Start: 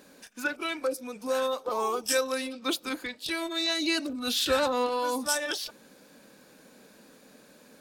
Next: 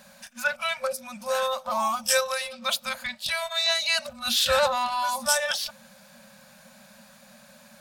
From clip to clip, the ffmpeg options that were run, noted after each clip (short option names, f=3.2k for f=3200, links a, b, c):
-af "afftfilt=real='re*(1-between(b*sr/4096,240,520))':imag='im*(1-between(b*sr/4096,240,520))':win_size=4096:overlap=0.75,volume=5dB"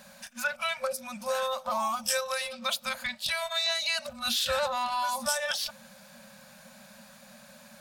-af "acompressor=threshold=-27dB:ratio=3"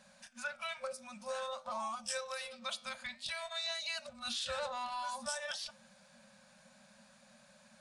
-af "flanger=delay=6.1:depth=5.2:regen=-86:speed=0.52:shape=sinusoidal,aeval=exprs='0.126*(cos(1*acos(clip(val(0)/0.126,-1,1)))-cos(1*PI/2))+0.001*(cos(4*acos(clip(val(0)/0.126,-1,1)))-cos(4*PI/2))':c=same,aresample=22050,aresample=44100,volume=-5.5dB"